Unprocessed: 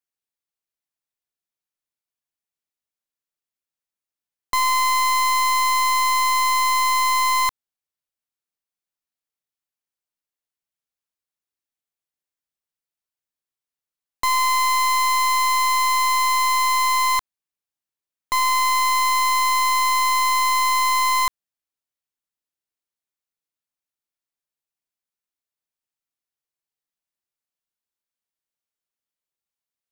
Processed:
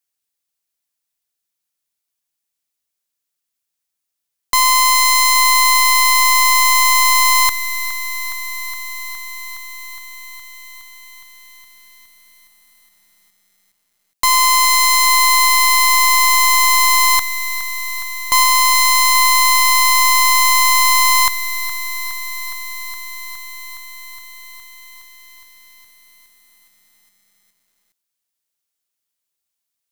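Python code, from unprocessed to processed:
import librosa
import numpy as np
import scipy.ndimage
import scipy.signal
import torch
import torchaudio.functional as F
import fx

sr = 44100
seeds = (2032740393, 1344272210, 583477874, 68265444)

y = fx.high_shelf(x, sr, hz=3100.0, db=9.5)
y = fx.echo_crushed(y, sr, ms=415, feedback_pct=80, bits=8, wet_db=-12)
y = y * librosa.db_to_amplitude(3.5)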